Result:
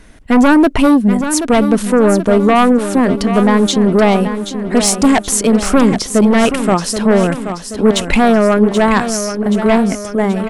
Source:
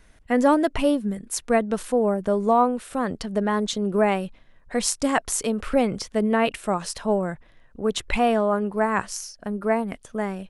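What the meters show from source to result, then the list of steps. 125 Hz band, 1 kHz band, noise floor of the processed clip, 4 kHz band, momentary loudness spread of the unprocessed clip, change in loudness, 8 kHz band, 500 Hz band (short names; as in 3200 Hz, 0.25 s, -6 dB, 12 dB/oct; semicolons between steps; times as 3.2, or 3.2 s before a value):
+14.5 dB, +8.5 dB, -29 dBFS, +12.0 dB, 9 LU, +11.5 dB, +11.5 dB, +9.5 dB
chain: bell 270 Hz +6.5 dB 1.1 oct; in parallel at -6 dB: sine folder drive 11 dB, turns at -3.5 dBFS; on the sum: feedback echo 0.779 s, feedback 53%, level -9.5 dB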